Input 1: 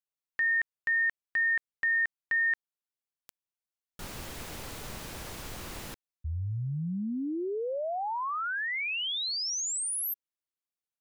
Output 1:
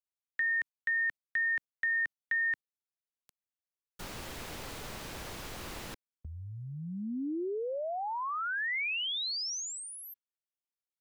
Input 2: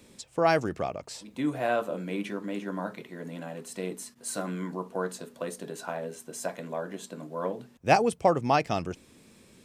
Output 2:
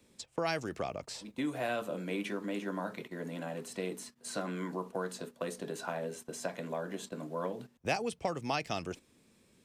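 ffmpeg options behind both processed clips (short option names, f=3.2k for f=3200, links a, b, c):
-filter_complex "[0:a]agate=range=-10dB:threshold=-49dB:ratio=16:release=116:detection=peak,acrossover=split=250|2100|5800[a][b][c][d];[a]acompressor=threshold=-44dB:ratio=4[e];[b]acompressor=threshold=-34dB:ratio=4[f];[c]acompressor=threshold=-35dB:ratio=4[g];[d]acompressor=threshold=-50dB:ratio=4[h];[e][f][g][h]amix=inputs=4:normalize=0"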